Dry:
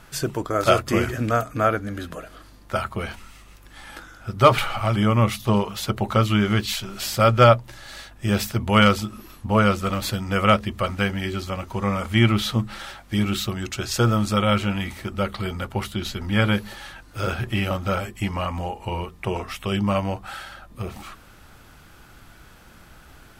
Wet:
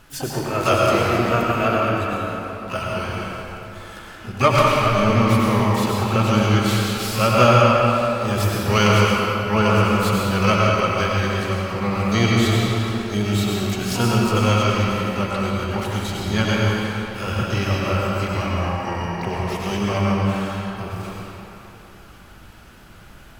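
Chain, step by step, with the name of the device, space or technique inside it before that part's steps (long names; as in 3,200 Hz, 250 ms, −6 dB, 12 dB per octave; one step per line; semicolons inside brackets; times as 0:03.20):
shimmer-style reverb (pitch-shifted copies added +12 semitones −7 dB; convolution reverb RT60 3.3 s, pre-delay 87 ms, DRR −4 dB)
level −3 dB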